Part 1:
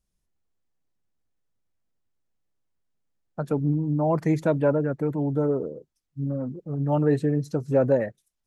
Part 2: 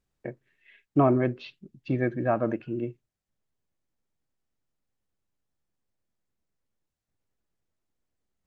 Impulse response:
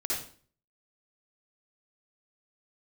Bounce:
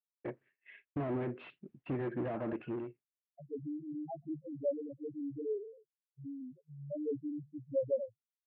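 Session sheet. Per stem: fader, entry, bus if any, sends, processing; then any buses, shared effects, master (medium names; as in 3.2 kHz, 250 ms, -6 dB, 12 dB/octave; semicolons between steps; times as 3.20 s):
-8.0 dB, 0.00 s, no send, peaking EQ 170 Hz -15 dB 0.24 oct; comb 7.2 ms, depth 88%; loudest bins only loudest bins 1
+2.0 dB, 0.00 s, no send, compression 3:1, threshold -26 dBFS, peak gain reduction 8 dB; slew-rate limiter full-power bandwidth 9.1 Hz; auto duck -24 dB, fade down 0.70 s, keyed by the first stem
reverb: none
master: high-pass 340 Hz 6 dB/octave; expander -55 dBFS; low-pass 2.7 kHz 24 dB/octave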